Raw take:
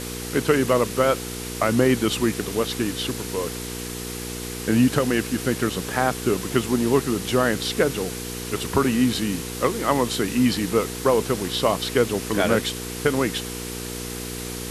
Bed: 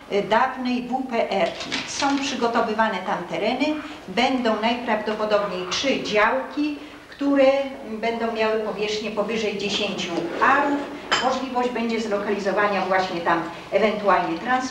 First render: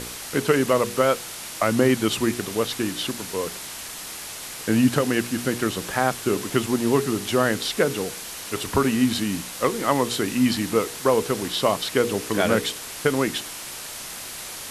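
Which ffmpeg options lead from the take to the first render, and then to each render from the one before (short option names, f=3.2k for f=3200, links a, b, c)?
-af "bandreject=f=60:t=h:w=4,bandreject=f=120:t=h:w=4,bandreject=f=180:t=h:w=4,bandreject=f=240:t=h:w=4,bandreject=f=300:t=h:w=4,bandreject=f=360:t=h:w=4,bandreject=f=420:t=h:w=4,bandreject=f=480:t=h:w=4"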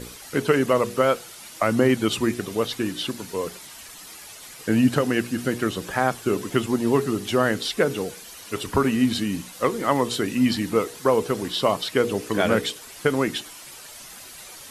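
-af "afftdn=nr=10:nf=-36"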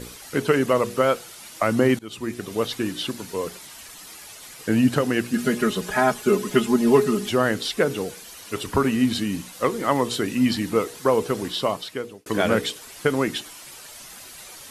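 -filter_complex "[0:a]asettb=1/sr,asplit=3[a][b][c];[a]atrim=end=5.334[d];[b]atrim=start=5.33:end=7.29,asetpts=PTS-STARTPTS,afade=t=in:d=0.004:c=qsin,afade=t=out:st=1.956:d=0.004:c=qsin,aecho=1:1:4.8:0.94,atrim=end_sample=86436[e];[c]atrim=start=7.286[f];[d][e]acrossfade=d=0.004:c1=hsin:c2=qsin[g];[g][f]acrossfade=d=0.004:c1=qsin:c2=hsin,asplit=3[h][i][j];[h]atrim=end=1.99,asetpts=PTS-STARTPTS,afade=t=out:st=1.986:d=0.004:c=hsin:silence=0.0668344[k];[i]atrim=start=1.99:end=12.26,asetpts=PTS-STARTPTS,afade=t=in:d=0.63:silence=0.0668344,afade=t=out:st=9.47:d=0.8[l];[j]atrim=start=12.26,asetpts=PTS-STARTPTS,afade=t=in:d=0.004:c=hsin[m];[k][l][m]concat=n=3:v=0:a=1"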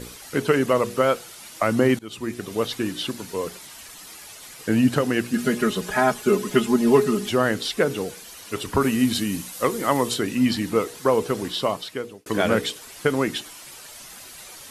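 -filter_complex "[0:a]asettb=1/sr,asplit=3[a][b][c];[a]atrim=end=8.814[d];[b]atrim=start=8.81:end=10.14,asetpts=PTS-STARTPTS,afade=t=in:d=0.004:c=qsin,afade=t=out:st=1.326:d=0.004:c=qsin,highshelf=f=7.5k:g=9.5[e];[c]atrim=start=10.136[f];[d][e]acrossfade=d=0.004:c1=hsin:c2=qsin[g];[g][f]acrossfade=d=0.004:c1=qsin:c2=hsin"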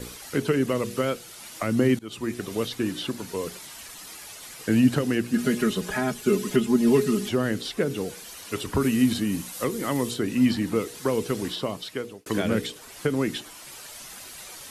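-filter_complex "[0:a]acrossover=split=420|1700[a][b][c];[b]acompressor=threshold=-34dB:ratio=6[d];[c]alimiter=limit=-23.5dB:level=0:latency=1:release=431[e];[a][d][e]amix=inputs=3:normalize=0"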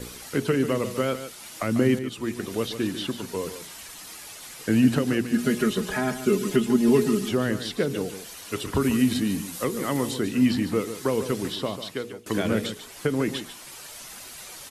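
-af "aecho=1:1:145:0.282"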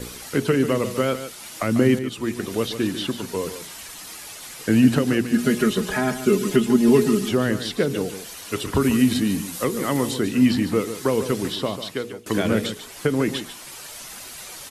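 -af "volume=3.5dB"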